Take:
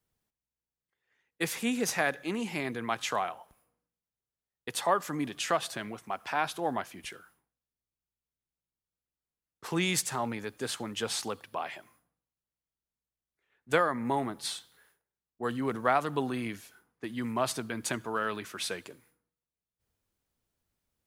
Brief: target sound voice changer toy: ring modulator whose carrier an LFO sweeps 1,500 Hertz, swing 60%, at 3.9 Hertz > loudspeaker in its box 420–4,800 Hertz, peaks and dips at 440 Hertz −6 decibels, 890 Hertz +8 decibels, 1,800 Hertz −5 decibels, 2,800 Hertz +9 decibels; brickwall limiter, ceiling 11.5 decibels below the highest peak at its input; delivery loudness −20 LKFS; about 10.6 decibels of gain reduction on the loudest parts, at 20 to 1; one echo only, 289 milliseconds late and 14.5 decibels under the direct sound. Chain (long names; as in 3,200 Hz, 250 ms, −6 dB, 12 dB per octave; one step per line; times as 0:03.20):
downward compressor 20 to 1, threshold −30 dBFS
brickwall limiter −28 dBFS
single-tap delay 289 ms −14.5 dB
ring modulator whose carrier an LFO sweeps 1,500 Hz, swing 60%, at 3.9 Hz
loudspeaker in its box 420–4,800 Hz, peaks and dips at 440 Hz −6 dB, 890 Hz +8 dB, 1,800 Hz −5 dB, 2,800 Hz +9 dB
level +18.5 dB